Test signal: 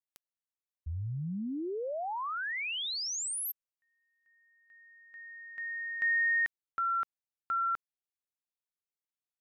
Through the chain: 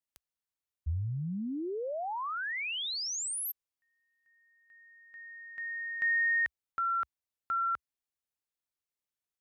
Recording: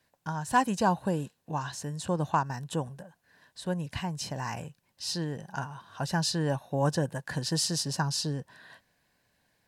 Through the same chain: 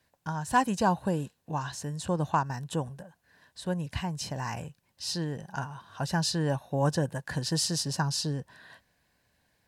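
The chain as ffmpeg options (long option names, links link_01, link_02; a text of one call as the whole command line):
ffmpeg -i in.wav -af "equalizer=frequency=65:width_type=o:width=0.96:gain=7" out.wav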